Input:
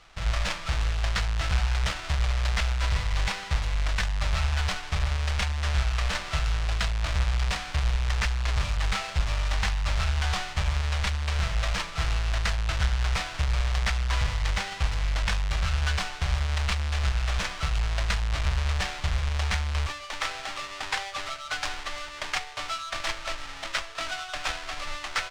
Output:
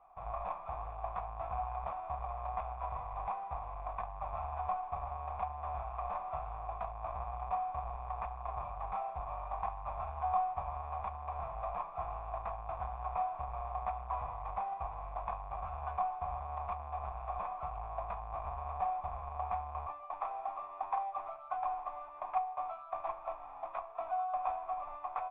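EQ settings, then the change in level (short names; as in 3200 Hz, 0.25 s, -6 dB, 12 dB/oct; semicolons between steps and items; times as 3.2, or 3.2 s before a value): vocal tract filter a; +8.0 dB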